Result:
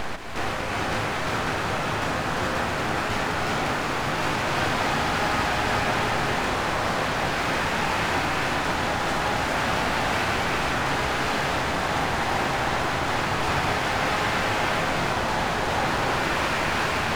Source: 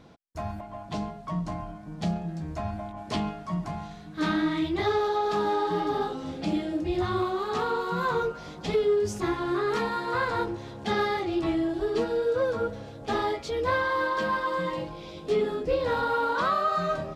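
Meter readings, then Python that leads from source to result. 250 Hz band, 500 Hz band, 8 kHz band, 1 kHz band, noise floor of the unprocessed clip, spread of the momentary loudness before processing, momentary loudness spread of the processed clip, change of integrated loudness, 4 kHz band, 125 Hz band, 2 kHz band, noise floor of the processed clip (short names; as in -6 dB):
0.0 dB, -1.5 dB, +14.5 dB, +5.0 dB, -43 dBFS, 10 LU, 3 LU, +4.0 dB, +10.5 dB, +5.5 dB, +10.0 dB, -27 dBFS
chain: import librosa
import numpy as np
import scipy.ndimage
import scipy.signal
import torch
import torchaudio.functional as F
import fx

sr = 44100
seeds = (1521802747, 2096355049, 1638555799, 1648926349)

y = fx.bin_compress(x, sr, power=0.2)
y = np.abs(y)
y = fx.rev_gated(y, sr, seeds[0], gate_ms=450, shape='rising', drr_db=-2.0)
y = y * librosa.db_to_amplitude(-7.0)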